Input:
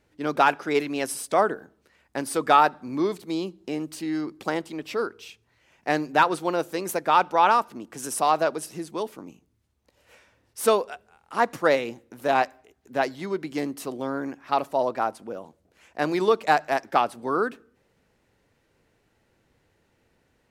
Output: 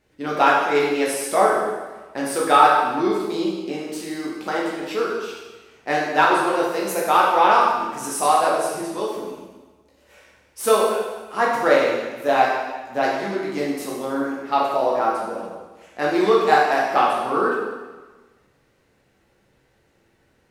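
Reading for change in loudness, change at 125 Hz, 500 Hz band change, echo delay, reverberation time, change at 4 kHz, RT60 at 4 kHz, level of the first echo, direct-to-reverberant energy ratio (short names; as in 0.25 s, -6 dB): +5.0 dB, +0.5 dB, +5.5 dB, none, 1.3 s, +5.0 dB, 1.2 s, none, -5.0 dB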